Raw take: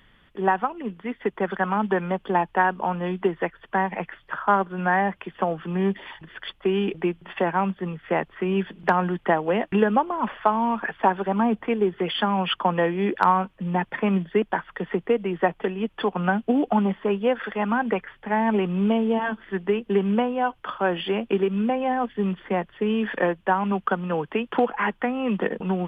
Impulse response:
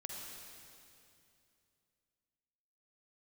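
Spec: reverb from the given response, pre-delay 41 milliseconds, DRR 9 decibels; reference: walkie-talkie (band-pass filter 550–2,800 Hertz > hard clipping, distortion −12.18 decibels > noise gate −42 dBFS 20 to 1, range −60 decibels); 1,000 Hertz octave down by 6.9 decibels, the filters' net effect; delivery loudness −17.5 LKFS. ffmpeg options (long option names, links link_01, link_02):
-filter_complex "[0:a]equalizer=frequency=1000:width_type=o:gain=-8,asplit=2[link_01][link_02];[1:a]atrim=start_sample=2205,adelay=41[link_03];[link_02][link_03]afir=irnorm=-1:irlink=0,volume=-7.5dB[link_04];[link_01][link_04]amix=inputs=2:normalize=0,highpass=550,lowpass=2800,asoftclip=type=hard:threshold=-23.5dB,agate=range=-60dB:threshold=-42dB:ratio=20,volume=15dB"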